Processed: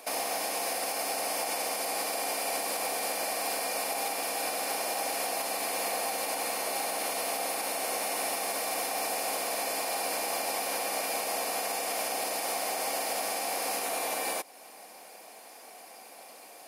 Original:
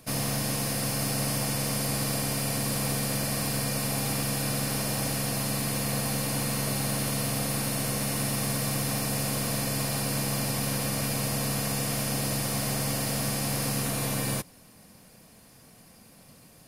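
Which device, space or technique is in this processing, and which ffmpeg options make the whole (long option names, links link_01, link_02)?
laptop speaker: -af "highpass=frequency=350:width=0.5412,highpass=frequency=350:width=1.3066,equalizer=frequency=770:width_type=o:width=0.56:gain=10.5,equalizer=frequency=2300:width_type=o:width=0.3:gain=5.5,alimiter=level_in=2.5dB:limit=-24dB:level=0:latency=1:release=261,volume=-2.5dB,volume=4.5dB"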